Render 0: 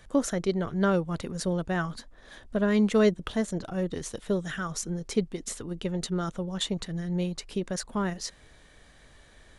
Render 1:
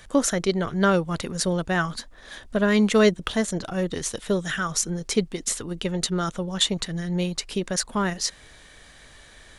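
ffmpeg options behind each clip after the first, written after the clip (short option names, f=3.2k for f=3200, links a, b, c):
-af "tiltshelf=f=1.1k:g=-3.5,volume=6.5dB"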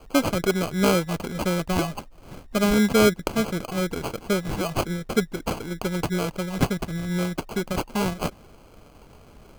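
-af "acrusher=samples=24:mix=1:aa=0.000001"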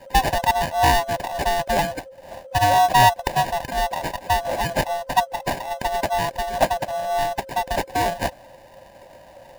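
-af "afftfilt=real='real(if(lt(b,1008),b+24*(1-2*mod(floor(b/24),2)),b),0)':imag='imag(if(lt(b,1008),b+24*(1-2*mod(floor(b/24),2)),b),0)':win_size=2048:overlap=0.75,volume=3dB"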